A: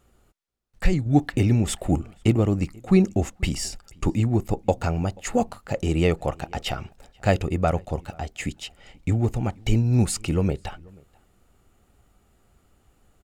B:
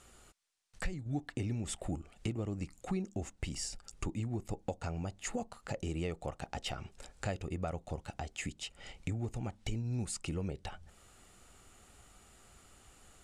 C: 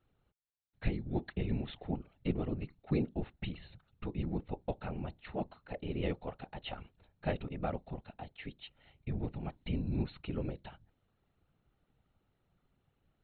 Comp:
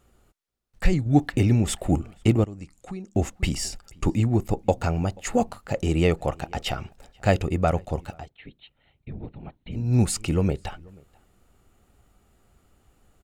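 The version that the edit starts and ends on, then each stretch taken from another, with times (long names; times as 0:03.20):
A
0:02.44–0:03.15: punch in from B
0:08.20–0:09.83: punch in from C, crossfade 0.24 s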